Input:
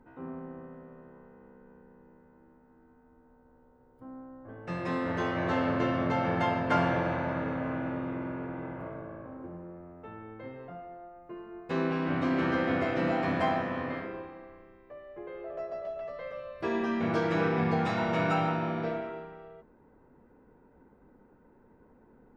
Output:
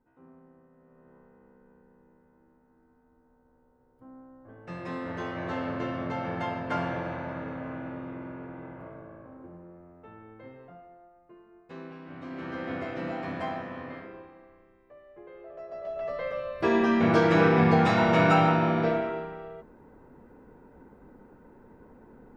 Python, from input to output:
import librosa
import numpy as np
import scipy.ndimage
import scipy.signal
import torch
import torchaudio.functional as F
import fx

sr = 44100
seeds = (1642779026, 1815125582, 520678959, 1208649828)

y = fx.gain(x, sr, db=fx.line((0.71, -14.0), (1.13, -4.0), (10.51, -4.0), (12.06, -15.0), (12.71, -5.5), (15.61, -5.5), (16.11, 7.0)))